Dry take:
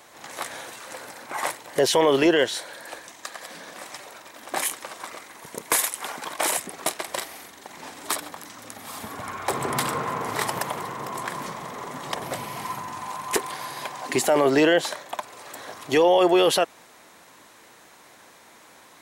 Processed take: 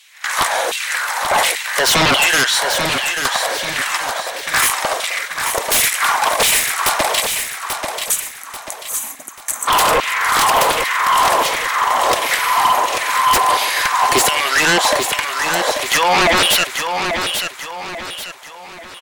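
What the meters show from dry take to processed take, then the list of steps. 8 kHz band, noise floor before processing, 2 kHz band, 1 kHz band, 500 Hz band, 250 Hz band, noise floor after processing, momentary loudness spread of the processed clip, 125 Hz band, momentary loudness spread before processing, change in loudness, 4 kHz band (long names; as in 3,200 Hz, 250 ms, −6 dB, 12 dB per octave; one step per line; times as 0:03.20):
+12.5 dB, −51 dBFS, +15.0 dB, +13.5 dB, +2.0 dB, −1.0 dB, −35 dBFS, 12 LU, +6.0 dB, 20 LU, +9.5 dB, +14.0 dB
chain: gain on a spectral selection 0:07.21–0:09.68, 290–5,800 Hz −22 dB
high-pass filter 200 Hz
noise gate −43 dBFS, range −14 dB
in parallel at −1.5 dB: downward compressor, threshold −27 dBFS, peak gain reduction 12 dB
on the sum: auto-filter high-pass saw down 1.4 Hz 460–3,100 Hz
sine wavefolder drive 15 dB, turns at −3 dBFS
on a send: repeating echo 838 ms, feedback 40%, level −6.5 dB
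on the sum: level −7 dB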